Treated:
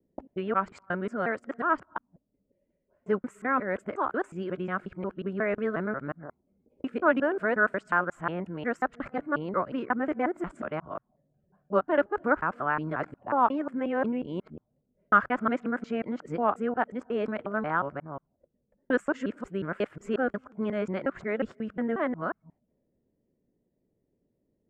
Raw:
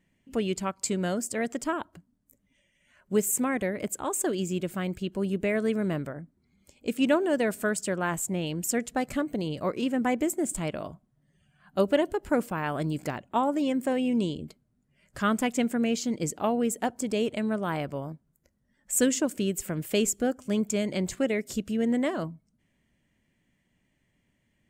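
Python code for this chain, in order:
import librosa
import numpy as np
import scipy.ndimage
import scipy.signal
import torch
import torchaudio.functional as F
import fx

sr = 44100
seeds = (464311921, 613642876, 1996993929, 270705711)

y = fx.local_reverse(x, sr, ms=180.0)
y = fx.low_shelf(y, sr, hz=310.0, db=-7.5)
y = fx.envelope_lowpass(y, sr, base_hz=440.0, top_hz=1400.0, q=3.1, full_db=-35.0, direction='up')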